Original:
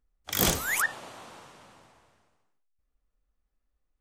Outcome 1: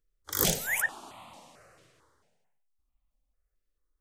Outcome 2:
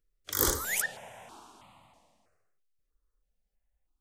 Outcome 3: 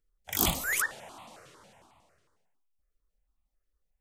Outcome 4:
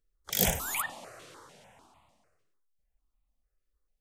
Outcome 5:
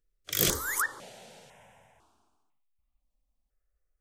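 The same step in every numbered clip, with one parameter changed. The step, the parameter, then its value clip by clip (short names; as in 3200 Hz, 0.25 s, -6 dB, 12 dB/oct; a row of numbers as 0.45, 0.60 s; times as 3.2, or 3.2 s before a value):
step phaser, rate: 4.5, 3.1, 11, 6.7, 2 Hz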